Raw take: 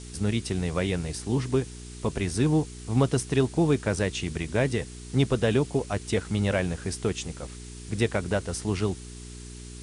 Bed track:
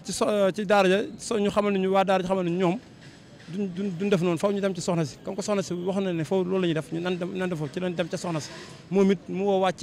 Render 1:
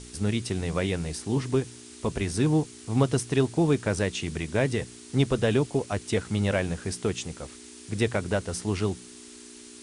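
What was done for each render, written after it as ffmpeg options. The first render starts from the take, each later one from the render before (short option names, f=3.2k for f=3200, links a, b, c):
-af "bandreject=f=60:t=h:w=4,bandreject=f=120:t=h:w=4,bandreject=f=180:t=h:w=4"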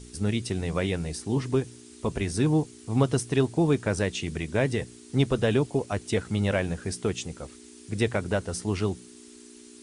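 -af "afftdn=nr=6:nf=-47"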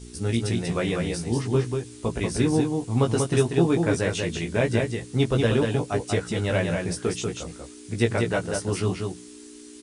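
-filter_complex "[0:a]asplit=2[a][b];[b]adelay=17,volume=-3.5dB[c];[a][c]amix=inputs=2:normalize=0,asplit=2[d][e];[e]aecho=0:1:190:0.631[f];[d][f]amix=inputs=2:normalize=0"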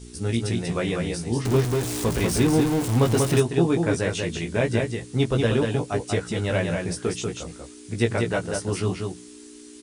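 -filter_complex "[0:a]asettb=1/sr,asplit=3[a][b][c];[a]atrim=end=1.454[d];[b]atrim=start=1.45:end=3.4,asetpts=PTS-STARTPTS,afade=t=in:d=0.004:c=qsin,afade=t=out:st=1.946:d=0.004:c=qsin,aeval=exprs='val(0)+0.5*0.0631*sgn(val(0))':c=same[e];[c]atrim=start=3.396[f];[d][e]acrossfade=d=0.004:c1=hsin:c2=qsin[g];[g][f]acrossfade=d=0.004:c1=qsin:c2=hsin"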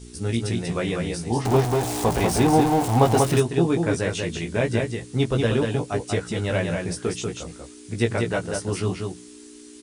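-filter_complex "[0:a]asettb=1/sr,asplit=3[a][b][c];[a]atrim=end=1.304[d];[b]atrim=start=1.3:end=3.24,asetpts=PTS-STARTPTS,afade=t=in:d=0.004:c=qsin,afade=t=out:st=1.936:d=0.004:c=qsin,equalizer=f=780:t=o:w=0.65:g=14[e];[c]atrim=start=3.236[f];[d][e]acrossfade=d=0.004:c1=hsin:c2=qsin[g];[g][f]acrossfade=d=0.004:c1=qsin:c2=hsin"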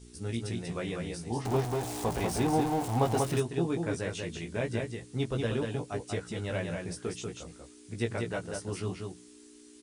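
-af "volume=-9.5dB"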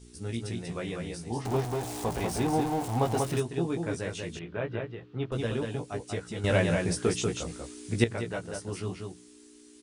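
-filter_complex "[0:a]asettb=1/sr,asplit=3[a][b][c];[a]atrim=end=4.394[d];[b]atrim=start=4.39:end=5.32,asetpts=PTS-STARTPTS,afade=t=in:d=0.004:c=qsin,afade=t=out:st=0.926:d=0.004:c=qsin,highpass=100,equalizer=f=230:t=q:w=4:g=-7,equalizer=f=1.3k:t=q:w=4:g=7,equalizer=f=2.1k:t=q:w=4:g=-6,lowpass=f=3.1k:w=0.5412,lowpass=f=3.1k:w=1.3066[e];[c]atrim=start=5.316[f];[d][e]acrossfade=d=0.004:c1=hsin:c2=qsin[g];[g][f]acrossfade=d=0.004:c1=qsin:c2=hsin,asplit=3[h][i][j];[h]atrim=end=6.442[k];[i]atrim=start=6.438:end=8.042,asetpts=PTS-STARTPTS,volume=9dB[l];[j]atrim=start=8.038[m];[k][l]acrossfade=d=0.004:c1=hsin:c2=hsin[n];[n][m]acrossfade=d=0.004:c1=hsin:c2=hsin"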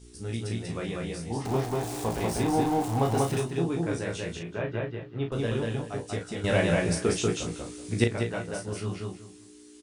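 -filter_complex "[0:a]asplit=2[a][b];[b]adelay=36,volume=-6dB[c];[a][c]amix=inputs=2:normalize=0,asplit=2[d][e];[e]adelay=190,lowpass=f=4.9k:p=1,volume=-13.5dB,asplit=2[f][g];[g]adelay=190,lowpass=f=4.9k:p=1,volume=0.28,asplit=2[h][i];[i]adelay=190,lowpass=f=4.9k:p=1,volume=0.28[j];[d][f][h][j]amix=inputs=4:normalize=0"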